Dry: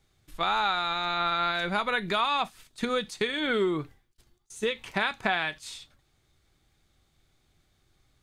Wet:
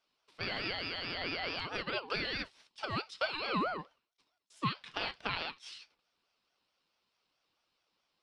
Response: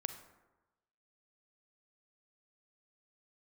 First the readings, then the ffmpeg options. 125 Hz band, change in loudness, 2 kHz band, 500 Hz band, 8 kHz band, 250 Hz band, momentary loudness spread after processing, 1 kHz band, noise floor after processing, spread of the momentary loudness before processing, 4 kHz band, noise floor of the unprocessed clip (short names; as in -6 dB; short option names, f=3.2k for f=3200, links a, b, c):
-3.5 dB, -8.5 dB, -8.0 dB, -10.5 dB, -14.0 dB, -9.0 dB, 10 LU, -11.0 dB, -82 dBFS, 9 LU, -6.5 dB, -70 dBFS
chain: -af "highpass=200,equalizer=f=440:t=q:w=4:g=8,equalizer=f=860:t=q:w=4:g=-8,equalizer=f=2k:t=q:w=4:g=5,equalizer=f=3.1k:t=q:w=4:g=6,equalizer=f=4.5k:t=q:w=4:g=9,equalizer=f=6.4k:t=q:w=4:g=-10,lowpass=f=7.7k:w=0.5412,lowpass=f=7.7k:w=1.3066,aeval=exprs='val(0)*sin(2*PI*850*n/s+850*0.3/4.6*sin(2*PI*4.6*n/s))':c=same,volume=-8dB"